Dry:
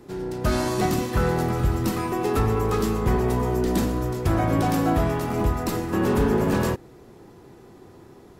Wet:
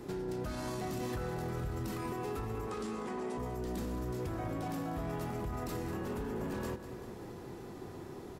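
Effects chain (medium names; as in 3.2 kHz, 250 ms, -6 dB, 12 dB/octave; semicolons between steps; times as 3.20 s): 2.67–3.38 s: elliptic band-pass 210–9300 Hz; peak limiter -23.5 dBFS, peak gain reduction 11.5 dB; compression 4:1, threshold -38 dBFS, peak gain reduction 9.5 dB; feedback delay 194 ms, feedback 60%, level -12 dB; trim +1 dB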